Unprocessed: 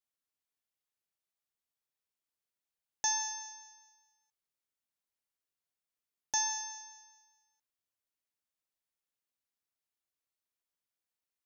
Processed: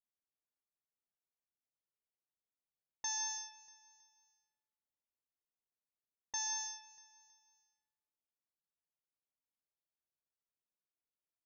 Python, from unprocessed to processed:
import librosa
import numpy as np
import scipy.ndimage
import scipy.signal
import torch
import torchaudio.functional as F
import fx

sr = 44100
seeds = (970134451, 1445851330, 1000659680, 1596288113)

p1 = scipy.signal.lfilter([1.0, -0.8], [1.0], x)
p2 = fx.env_lowpass(p1, sr, base_hz=890.0, full_db=-39.0)
p3 = fx.over_compress(p2, sr, threshold_db=-39.0, ratio=-0.5)
p4 = p2 + F.gain(torch.from_numpy(p3), 0.5).numpy()
p5 = fx.air_absorb(p4, sr, metres=120.0)
p6 = fx.echo_feedback(p5, sr, ms=320, feedback_pct=41, wet_db=-18.5)
y = F.gain(torch.from_numpy(p6), 1.0).numpy()